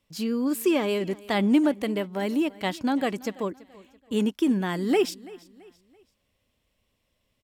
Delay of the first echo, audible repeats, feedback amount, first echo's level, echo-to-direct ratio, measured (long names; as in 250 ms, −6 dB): 334 ms, 2, 39%, −21.0 dB, −20.5 dB